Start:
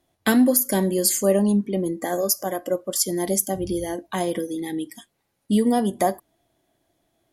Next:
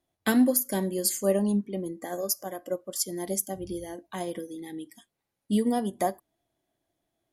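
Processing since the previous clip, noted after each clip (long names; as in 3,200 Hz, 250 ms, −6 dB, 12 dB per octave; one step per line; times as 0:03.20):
expander for the loud parts 1.5 to 1, over −27 dBFS
level −3.5 dB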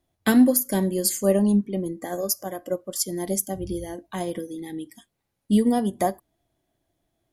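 low-shelf EQ 140 Hz +9.5 dB
level +3 dB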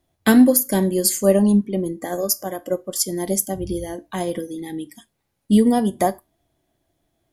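tuned comb filter 74 Hz, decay 0.23 s, harmonics all, mix 40%
level +7 dB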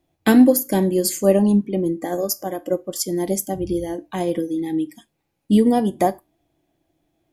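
thirty-one-band graphic EQ 160 Hz +6 dB, 315 Hz +10 dB, 500 Hz +4 dB, 800 Hz +5 dB, 2,500 Hz +6 dB, 10,000 Hz −4 dB
level −2.5 dB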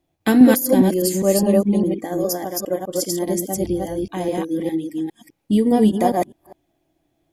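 delay that plays each chunk backwards 204 ms, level −0.5 dB
level −2 dB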